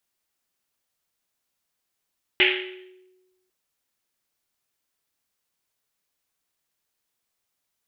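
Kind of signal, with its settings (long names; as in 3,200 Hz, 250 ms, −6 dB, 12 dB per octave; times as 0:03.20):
drum after Risset, pitch 370 Hz, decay 1.27 s, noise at 2,500 Hz, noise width 1,500 Hz, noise 65%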